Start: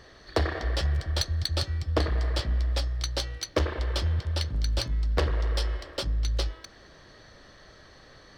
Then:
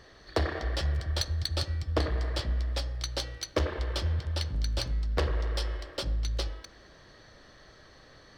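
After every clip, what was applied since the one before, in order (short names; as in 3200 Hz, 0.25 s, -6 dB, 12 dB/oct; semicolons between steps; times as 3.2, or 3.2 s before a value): on a send at -12 dB: LPF 1300 Hz 6 dB/oct + reverb RT60 0.55 s, pre-delay 47 ms; on the sum: gain -2.5 dB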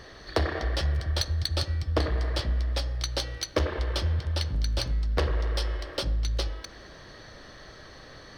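in parallel at +2.5 dB: compressor, threshold -39 dBFS, peak gain reduction 15.5 dB; on the sum: notch 7400 Hz, Q 8.6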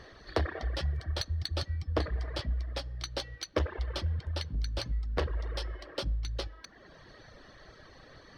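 reverb removal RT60 0.87 s; high shelf 5900 Hz -9 dB; gain -3.5 dB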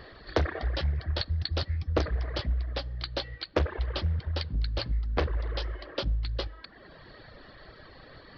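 downsampling 11025 Hz; Doppler distortion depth 0.48 ms; gain +3.5 dB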